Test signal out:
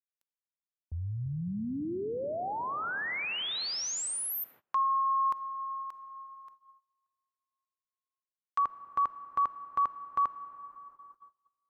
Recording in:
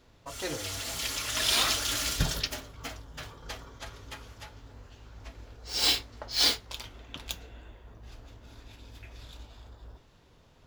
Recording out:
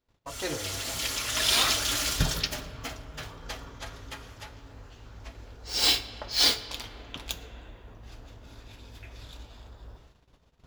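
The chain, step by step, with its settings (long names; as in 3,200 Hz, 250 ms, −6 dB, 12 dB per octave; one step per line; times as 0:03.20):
comb and all-pass reverb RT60 4.9 s, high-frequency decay 0.35×, pre-delay 5 ms, DRR 12.5 dB
noise gate −56 dBFS, range −24 dB
level +2 dB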